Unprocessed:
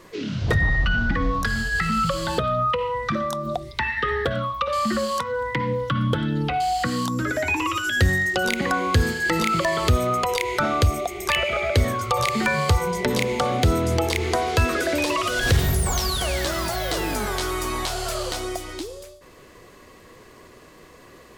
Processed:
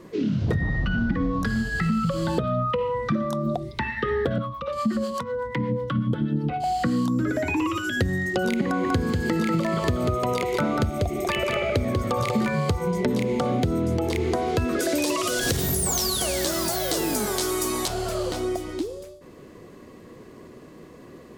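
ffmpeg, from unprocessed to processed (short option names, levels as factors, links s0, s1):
-filter_complex "[0:a]asettb=1/sr,asplit=3[s0][s1][s2];[s0]atrim=end=4.384[s3];[s1]atrim=start=4.38:end=6.64,asetpts=PTS-STARTPTS,afade=t=in:d=0.004:c=qsin,afade=t=out:st=2.256:d=0.004:c=qsin,acrossover=split=480[s4][s5];[s4]aeval=exprs='val(0)*(1-0.7/2+0.7/2*cos(2*PI*8.1*n/s))':c=same[s6];[s5]aeval=exprs='val(0)*(1-0.7/2-0.7/2*cos(2*PI*8.1*n/s))':c=same[s7];[s6][s7]amix=inputs=2:normalize=0[s8];[s2]atrim=start=6.636[s9];[s3][s8]acrossfade=d=0.004:c1=hsin:c2=qsin[s10];[s10][s9]acrossfade=d=0.004:c1=qsin:c2=hsin,asettb=1/sr,asplit=3[s11][s12][s13];[s11]atrim=end=8.644[s14];[s12]atrim=start=8.64:end=12.5,asetpts=PTS-STARTPTS,afade=t=in:d=0.004:c=qsin,afade=t=out:st=3.856:d=0.004:c=qsin,aecho=1:1:192:0.631,atrim=end_sample=170226[s15];[s13]atrim=start=12.496[s16];[s14][s15]acrossfade=d=0.004:c1=hsin:c2=qsin[s17];[s17][s16]acrossfade=d=0.004:c1=qsin:c2=hsin,asettb=1/sr,asplit=3[s18][s19][s20];[s18]atrim=end=14.794[s21];[s19]atrim=start=14.79:end=17.88,asetpts=PTS-STARTPTS,afade=t=in:d=0.004:c=qsin,afade=t=out:st=3.086:d=0.004:c=qsin,bass=f=250:g=-7,treble=f=4000:g=13[s22];[s20]atrim=start=17.876[s23];[s21][s22]acrossfade=d=0.004:c1=hsin:c2=qsin[s24];[s24][s23]acrossfade=d=0.004:c1=qsin:c2=hsin,equalizer=f=220:w=0.46:g=14,acompressor=threshold=0.2:ratio=6,volume=0.501"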